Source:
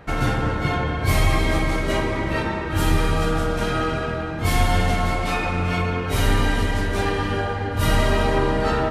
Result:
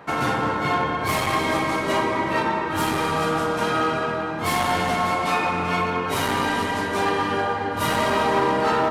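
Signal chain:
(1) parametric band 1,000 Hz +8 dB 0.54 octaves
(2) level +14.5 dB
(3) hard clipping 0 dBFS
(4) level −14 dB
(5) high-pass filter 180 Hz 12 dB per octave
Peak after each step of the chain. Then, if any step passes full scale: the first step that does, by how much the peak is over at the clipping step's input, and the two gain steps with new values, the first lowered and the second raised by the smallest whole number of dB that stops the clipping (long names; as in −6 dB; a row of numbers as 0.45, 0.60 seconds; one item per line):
−5.0, +9.5, 0.0, −14.0, −10.0 dBFS
step 2, 9.5 dB
step 2 +4.5 dB, step 4 −4 dB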